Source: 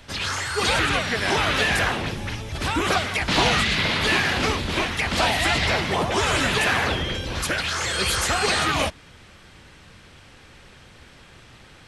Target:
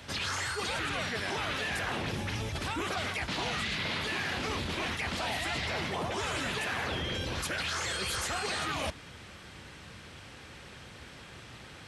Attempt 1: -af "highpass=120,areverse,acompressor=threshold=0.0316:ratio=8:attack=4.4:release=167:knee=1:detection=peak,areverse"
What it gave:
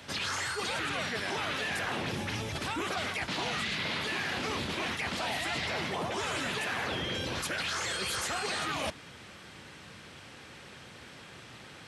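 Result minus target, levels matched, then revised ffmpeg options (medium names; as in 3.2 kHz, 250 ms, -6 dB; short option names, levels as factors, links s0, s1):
125 Hz band -3.0 dB
-af "highpass=59,areverse,acompressor=threshold=0.0316:ratio=8:attack=4.4:release=167:knee=1:detection=peak,areverse"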